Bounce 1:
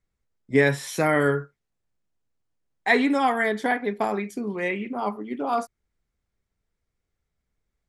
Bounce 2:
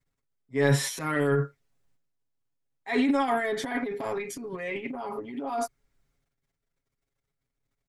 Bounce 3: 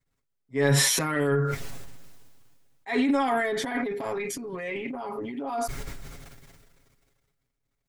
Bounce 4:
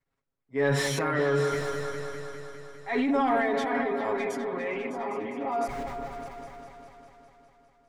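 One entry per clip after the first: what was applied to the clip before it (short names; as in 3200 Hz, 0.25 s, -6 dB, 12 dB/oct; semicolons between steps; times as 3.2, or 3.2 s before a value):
transient shaper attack -9 dB, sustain +12 dB; comb 7.3 ms, depth 83%; gain -8 dB
sustainer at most 28 dB/s
repeats that get brighter 0.202 s, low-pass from 750 Hz, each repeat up 2 oct, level -6 dB; overdrive pedal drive 12 dB, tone 1100 Hz, clips at -9.5 dBFS; gain -2 dB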